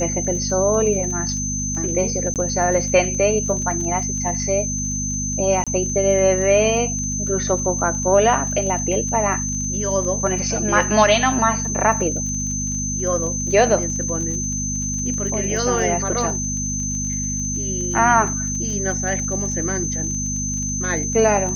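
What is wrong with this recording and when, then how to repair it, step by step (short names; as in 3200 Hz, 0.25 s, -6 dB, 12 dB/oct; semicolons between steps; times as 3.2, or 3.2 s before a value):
crackle 26/s -28 dBFS
hum 50 Hz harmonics 5 -27 dBFS
tone 6200 Hz -24 dBFS
2.34–2.36 gap 18 ms
5.64–5.67 gap 26 ms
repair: de-click; de-hum 50 Hz, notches 5; notch 6200 Hz, Q 30; interpolate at 2.34, 18 ms; interpolate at 5.64, 26 ms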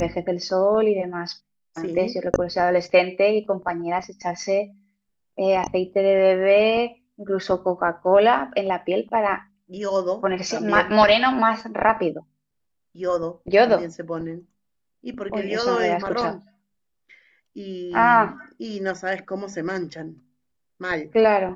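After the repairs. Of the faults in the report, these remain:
none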